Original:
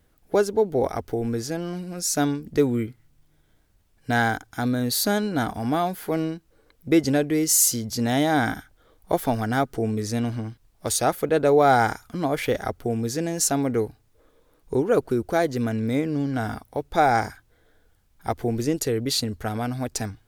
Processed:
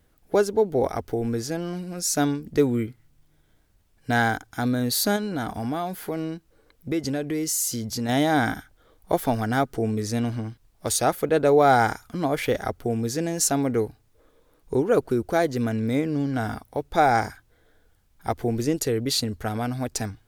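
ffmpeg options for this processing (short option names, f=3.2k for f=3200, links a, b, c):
-filter_complex "[0:a]asettb=1/sr,asplit=3[a][b][c];[a]atrim=end=5.164[d];[b]atrim=start=5.16:end=8.09,asetpts=PTS-STARTPTS,afade=t=in:d=0.004:c=qsin,afade=t=out:st=2.926:d=0.004:c=qsin,acompressor=threshold=-25dB:ratio=2.5:attack=3.2:release=140:knee=1:detection=peak[e];[c]atrim=start=8.086[f];[d][e]acrossfade=d=0.004:c1=hsin:c2=qsin[g];[g][f]acrossfade=d=0.004:c1=qsin:c2=hsin"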